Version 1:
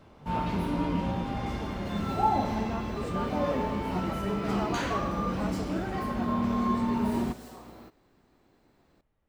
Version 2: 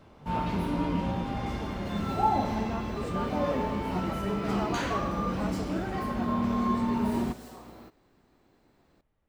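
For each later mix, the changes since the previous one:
no change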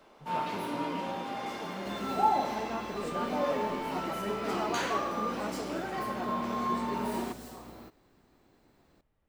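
first sound: add high-pass 370 Hz 12 dB/octave; master: add treble shelf 6 kHz +4 dB

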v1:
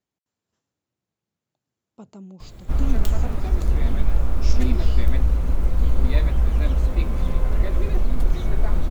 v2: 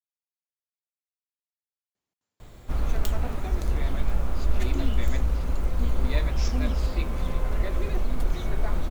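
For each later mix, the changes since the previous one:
speech: entry +1.95 s; master: add bass shelf 370 Hz -6 dB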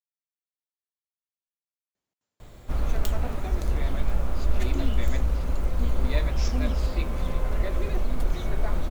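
master: add peaking EQ 580 Hz +2.5 dB 0.32 oct

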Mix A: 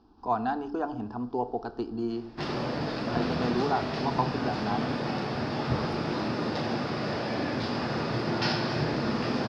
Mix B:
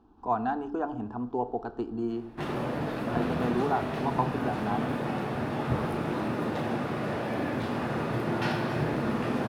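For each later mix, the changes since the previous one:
master: remove resonant low-pass 5 kHz, resonance Q 6.7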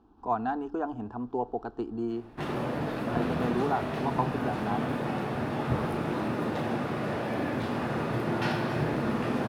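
speech: send -9.5 dB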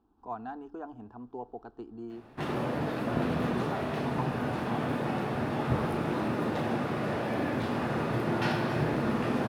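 speech -9.5 dB

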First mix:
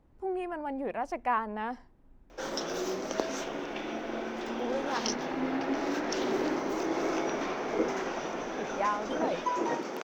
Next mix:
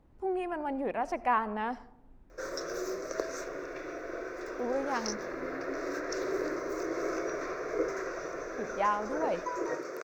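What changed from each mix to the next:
background: add static phaser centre 840 Hz, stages 6; reverb: on, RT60 0.85 s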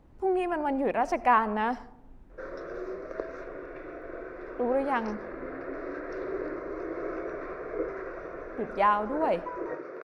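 speech +5.5 dB; background: add distance through air 400 m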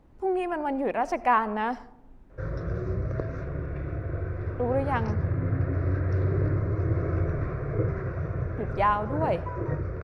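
background: remove high-pass 320 Hz 24 dB/octave

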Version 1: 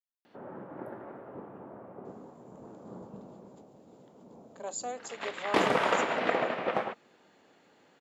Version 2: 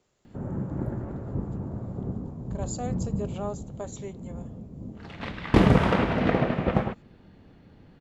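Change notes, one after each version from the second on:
speech: entry -2.05 s; master: remove high-pass 510 Hz 12 dB/octave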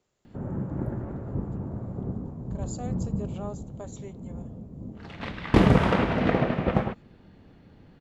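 speech -4.5 dB

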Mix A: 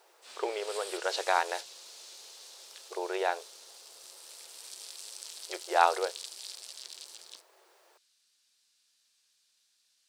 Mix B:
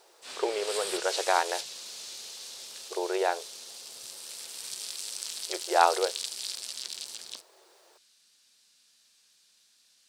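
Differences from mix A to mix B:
background +7.5 dB; master: add bass shelf 440 Hz +8.5 dB

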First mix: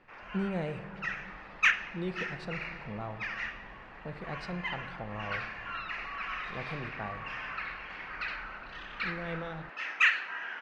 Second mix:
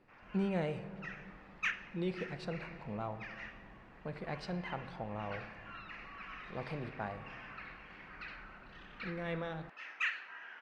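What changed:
background -11.0 dB; master: add bass shelf 85 Hz -7.5 dB

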